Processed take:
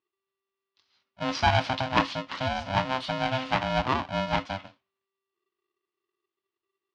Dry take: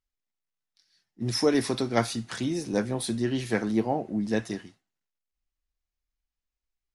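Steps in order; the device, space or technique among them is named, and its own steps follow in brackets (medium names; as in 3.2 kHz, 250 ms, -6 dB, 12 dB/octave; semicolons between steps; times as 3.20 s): ring modulator pedal into a guitar cabinet (polarity switched at an audio rate 390 Hz; cabinet simulation 88–4500 Hz, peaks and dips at 98 Hz +5 dB, 150 Hz -4 dB, 280 Hz +3 dB, 450 Hz -8 dB, 1 kHz +6 dB, 2.9 kHz +4 dB)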